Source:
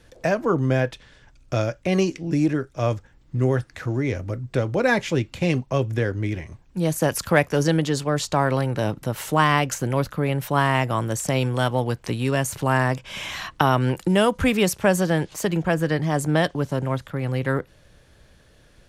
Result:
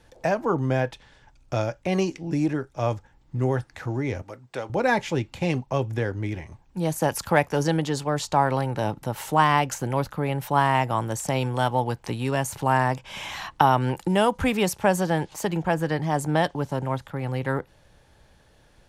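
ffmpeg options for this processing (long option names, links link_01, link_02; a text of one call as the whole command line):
ffmpeg -i in.wav -filter_complex "[0:a]asettb=1/sr,asplit=3[link_01][link_02][link_03];[link_01]atrim=end=4.224[link_04];[link_02]atrim=start=4.22:end=4.7,asetpts=PTS-STARTPTS,afade=type=in:duration=0.004:curve=qsin,afade=type=out:start_time=0.476:duration=0.004:curve=qsin,highpass=frequency=720:poles=1[link_05];[link_03]atrim=start=4.696[link_06];[link_04][link_05]acrossfade=duration=0.004:curve1=hsin:curve2=qsin[link_07];[link_07][link_06]acrossfade=duration=0.004:curve1=qsin:curve2=hsin,equalizer=frequency=850:width_type=o:width=0.39:gain=9.5,volume=-3.5dB" out.wav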